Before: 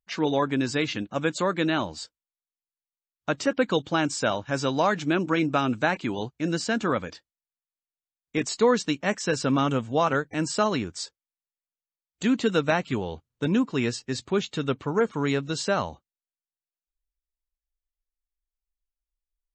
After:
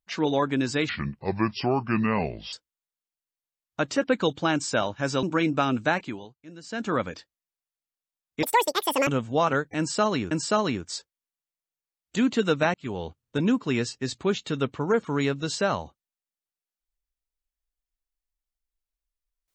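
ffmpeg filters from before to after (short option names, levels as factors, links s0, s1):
-filter_complex "[0:a]asplit=10[s0][s1][s2][s3][s4][s5][s6][s7][s8][s9];[s0]atrim=end=0.894[s10];[s1]atrim=start=0.89:end=2.02,asetpts=PTS-STARTPTS,asetrate=30429,aresample=44100[s11];[s2]atrim=start=2.016:end=4.722[s12];[s3]atrim=start=5.188:end=6.25,asetpts=PTS-STARTPTS,afade=t=out:st=0.692:d=0.37:silence=0.125893[s13];[s4]atrim=start=6.25:end=6.57,asetpts=PTS-STARTPTS,volume=0.126[s14];[s5]atrim=start=6.57:end=8.394,asetpts=PTS-STARTPTS,afade=t=in:d=0.37:silence=0.125893[s15];[s6]atrim=start=8.39:end=9.67,asetpts=PTS-STARTPTS,asetrate=87759,aresample=44100[s16];[s7]atrim=start=9.666:end=10.912[s17];[s8]atrim=start=10.378:end=12.81,asetpts=PTS-STARTPTS,afade=t=out:st=2.428:d=0.004:c=hsin[s18];[s9]atrim=start=12.81,asetpts=PTS-STARTPTS,afade=t=in:d=0.26[s19];[s10][s11]acrossfade=d=0.004:c1=hsin:c2=hsin[s20];[s20][s12]acrossfade=d=0.004:c1=hsin:c2=hsin[s21];[s13][s14][s15]concat=n=3:v=0:a=1[s22];[s21][s22]acrossfade=d=0.004:c1=hsin:c2=hsin[s23];[s23][s16]acrossfade=d=0.004:c1=hsin:c2=hsin[s24];[s24][s17]acrossfade=d=0.004:c1=hsin:c2=hsin[s25];[s18][s19]concat=n=2:v=0:a=1[s26];[s25][s26]acrossfade=d=0.004:c1=hsin:c2=hsin"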